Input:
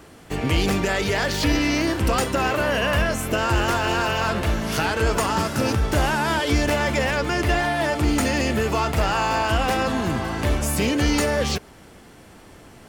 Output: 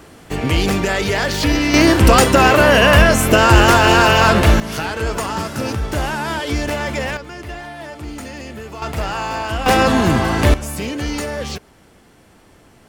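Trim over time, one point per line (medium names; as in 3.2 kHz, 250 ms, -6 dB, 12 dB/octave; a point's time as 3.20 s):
+4 dB
from 1.74 s +11 dB
from 4.60 s -0.5 dB
from 7.17 s -10 dB
from 8.82 s -1.5 dB
from 9.66 s +9 dB
from 10.54 s -3 dB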